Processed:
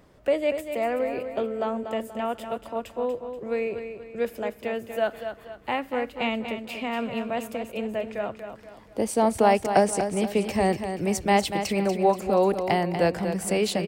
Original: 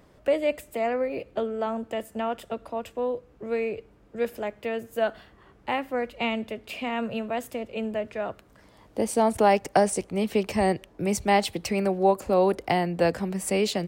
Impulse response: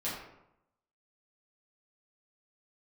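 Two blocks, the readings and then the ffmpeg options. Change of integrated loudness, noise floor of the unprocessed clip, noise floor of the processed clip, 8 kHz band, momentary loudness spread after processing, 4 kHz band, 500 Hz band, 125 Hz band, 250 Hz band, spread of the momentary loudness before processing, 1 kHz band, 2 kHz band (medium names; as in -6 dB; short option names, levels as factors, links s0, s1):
+0.5 dB, -57 dBFS, -50 dBFS, +0.5 dB, 11 LU, +0.5 dB, +0.5 dB, +1.0 dB, +1.0 dB, 11 LU, +0.5 dB, +0.5 dB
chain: -af "aecho=1:1:240|480|720|960:0.376|0.15|0.0601|0.0241"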